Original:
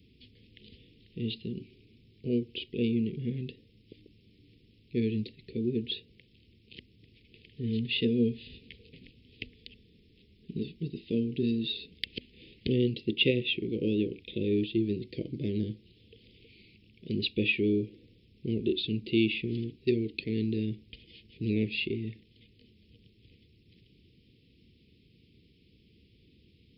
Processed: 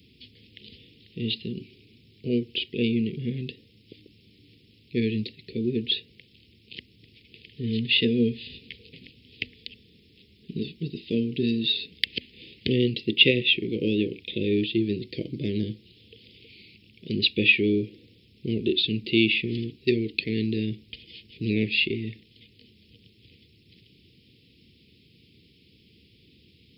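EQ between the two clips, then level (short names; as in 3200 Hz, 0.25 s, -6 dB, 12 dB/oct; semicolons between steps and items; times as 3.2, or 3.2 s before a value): HPF 69 Hz; high shelf 2300 Hz +8 dB; dynamic EQ 1800 Hz, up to +5 dB, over -50 dBFS, Q 1.9; +3.5 dB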